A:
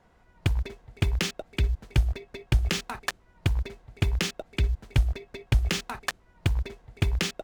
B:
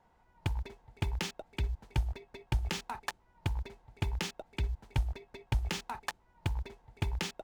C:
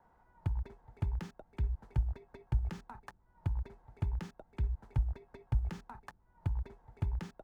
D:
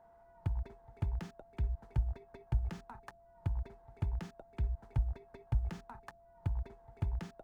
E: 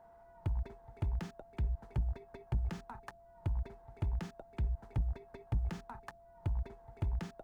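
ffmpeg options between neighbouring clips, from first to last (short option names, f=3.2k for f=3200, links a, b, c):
-af "equalizer=f=880:t=o:w=0.29:g=12,volume=-8.5dB"
-filter_complex "[0:a]highshelf=f=2k:t=q:w=1.5:g=-8,acrossover=split=230[a][b];[b]acompressor=threshold=-53dB:ratio=2.5[c];[a][c]amix=inputs=2:normalize=0"
-af "aeval=exprs='val(0)+0.00112*sin(2*PI*680*n/s)':c=same,volume=-1dB"
-af "asoftclip=type=tanh:threshold=-29dB,volume=2.5dB"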